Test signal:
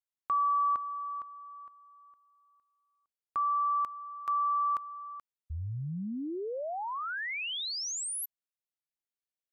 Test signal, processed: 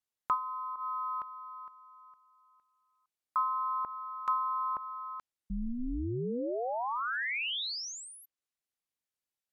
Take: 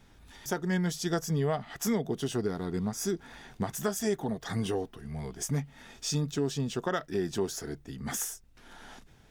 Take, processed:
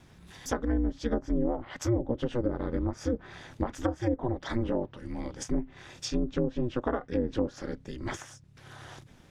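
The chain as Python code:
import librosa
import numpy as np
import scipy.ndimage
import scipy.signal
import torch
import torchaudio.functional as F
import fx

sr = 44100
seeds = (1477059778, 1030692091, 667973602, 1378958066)

y = x * np.sin(2.0 * np.pi * 120.0 * np.arange(len(x)) / sr)
y = fx.env_lowpass_down(y, sr, base_hz=550.0, full_db=-27.0)
y = y * 10.0 ** (5.0 / 20.0)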